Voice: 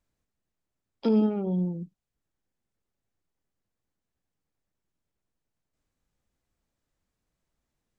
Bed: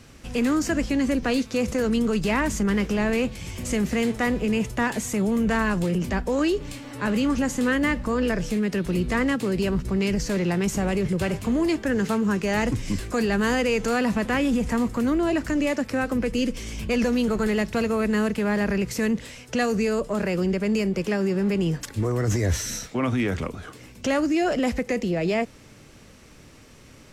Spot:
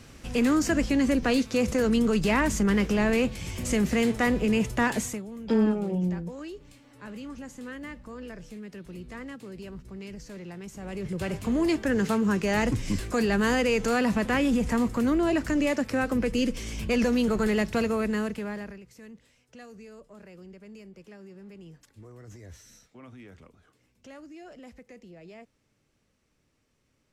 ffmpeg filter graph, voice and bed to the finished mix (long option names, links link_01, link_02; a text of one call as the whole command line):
ffmpeg -i stem1.wav -i stem2.wav -filter_complex "[0:a]adelay=4450,volume=0dB[link_01];[1:a]volume=15dB,afade=type=out:start_time=5.01:duration=0.21:silence=0.149624,afade=type=in:start_time=10.77:duration=0.92:silence=0.16788,afade=type=out:start_time=17.76:duration=1.04:silence=0.0794328[link_02];[link_01][link_02]amix=inputs=2:normalize=0" out.wav